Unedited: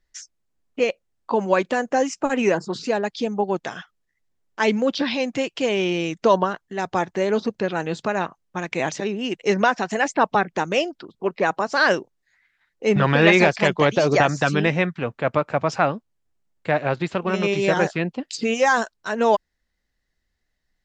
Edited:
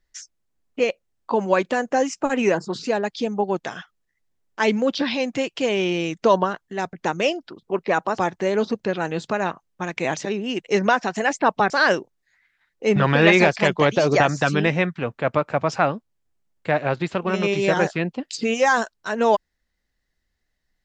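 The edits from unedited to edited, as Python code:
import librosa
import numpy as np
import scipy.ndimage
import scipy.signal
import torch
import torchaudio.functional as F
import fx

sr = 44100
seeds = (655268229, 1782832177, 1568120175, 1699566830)

y = fx.edit(x, sr, fx.move(start_s=10.45, length_s=1.25, to_s=6.93), tone=tone)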